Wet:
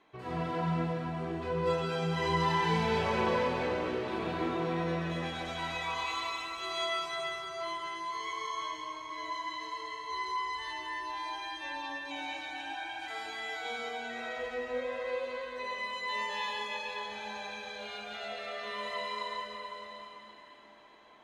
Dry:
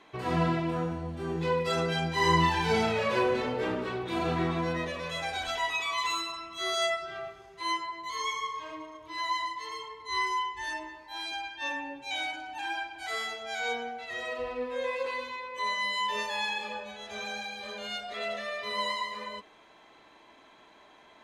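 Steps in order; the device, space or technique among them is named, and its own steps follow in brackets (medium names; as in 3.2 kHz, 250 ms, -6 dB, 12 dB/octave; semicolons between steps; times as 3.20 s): swimming-pool hall (reverberation RT60 4.0 s, pre-delay 117 ms, DRR -4 dB; treble shelf 3.9 kHz -6 dB); trim -8 dB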